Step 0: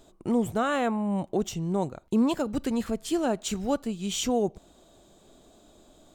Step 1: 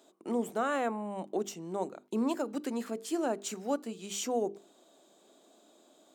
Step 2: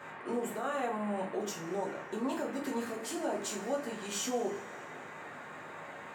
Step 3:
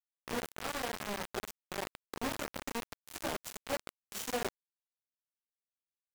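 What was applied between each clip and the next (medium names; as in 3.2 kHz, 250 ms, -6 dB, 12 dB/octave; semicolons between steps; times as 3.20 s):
high-pass 240 Hz 24 dB/octave; hum notches 50/100/150/200/250/300/350/400/450 Hz; dynamic bell 3.4 kHz, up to -6 dB, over -50 dBFS, Q 2; trim -4 dB
band noise 140–1900 Hz -49 dBFS; peak limiter -27.5 dBFS, peak gain reduction 8.5 dB; two-slope reverb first 0.29 s, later 2.3 s, from -21 dB, DRR -4.5 dB; trim -3 dB
bit crusher 5-bit; trim -4 dB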